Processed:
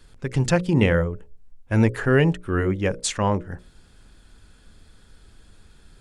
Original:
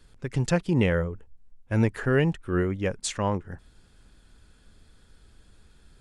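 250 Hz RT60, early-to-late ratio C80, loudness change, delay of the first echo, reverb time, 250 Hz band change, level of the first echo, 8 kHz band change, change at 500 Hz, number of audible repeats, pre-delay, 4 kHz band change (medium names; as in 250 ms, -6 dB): no reverb, no reverb, +4.5 dB, no echo, no reverb, +4.0 dB, no echo, +5.0 dB, +4.0 dB, no echo, no reverb, +5.0 dB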